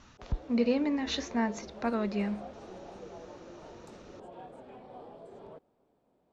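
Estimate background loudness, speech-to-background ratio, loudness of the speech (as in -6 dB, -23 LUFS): -48.0 LUFS, 16.0 dB, -32.0 LUFS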